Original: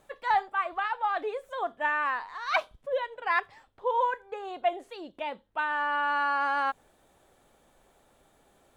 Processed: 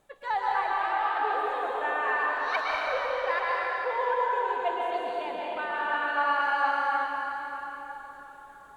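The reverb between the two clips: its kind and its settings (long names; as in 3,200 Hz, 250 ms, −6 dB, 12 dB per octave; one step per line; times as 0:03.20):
dense smooth reverb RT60 4.5 s, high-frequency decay 0.75×, pre-delay 105 ms, DRR −5.5 dB
level −4.5 dB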